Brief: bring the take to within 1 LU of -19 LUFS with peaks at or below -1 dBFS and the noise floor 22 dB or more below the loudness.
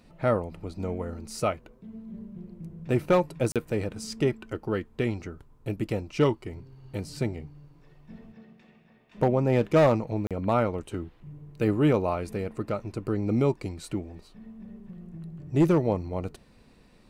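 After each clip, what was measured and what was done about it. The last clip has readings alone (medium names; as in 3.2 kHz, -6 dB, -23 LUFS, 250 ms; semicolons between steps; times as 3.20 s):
clipped samples 0.3%; clipping level -14.0 dBFS; dropouts 2; longest dropout 37 ms; loudness -28.0 LUFS; peak level -14.0 dBFS; loudness target -19.0 LUFS
-> clip repair -14 dBFS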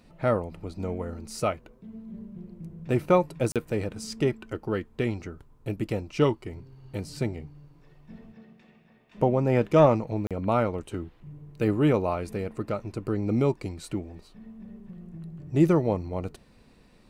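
clipped samples 0.0%; dropouts 2; longest dropout 37 ms
-> interpolate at 3.52/10.27 s, 37 ms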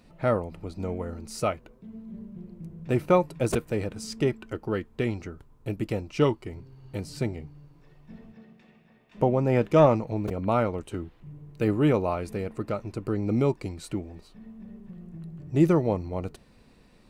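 dropouts 0; loudness -27.5 LUFS; peak level -7.0 dBFS; loudness target -19.0 LUFS
-> trim +8.5 dB; peak limiter -1 dBFS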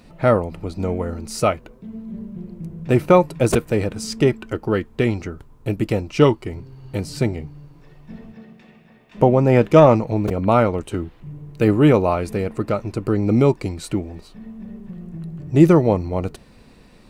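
loudness -19.0 LUFS; peak level -1.0 dBFS; noise floor -49 dBFS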